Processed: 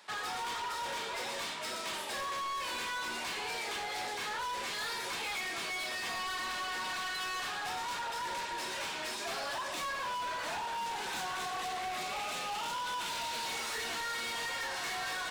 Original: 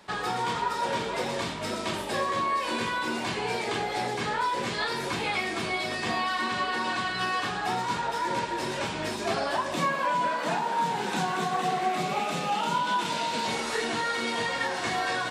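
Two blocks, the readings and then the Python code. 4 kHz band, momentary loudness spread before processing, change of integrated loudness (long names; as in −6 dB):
−4.0 dB, 3 LU, −7.5 dB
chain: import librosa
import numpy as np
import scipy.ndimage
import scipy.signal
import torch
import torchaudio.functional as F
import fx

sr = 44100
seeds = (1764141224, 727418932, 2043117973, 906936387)

y = fx.highpass(x, sr, hz=1300.0, slope=6)
y = np.clip(10.0 ** (35.0 / 20.0) * y, -1.0, 1.0) / 10.0 ** (35.0 / 20.0)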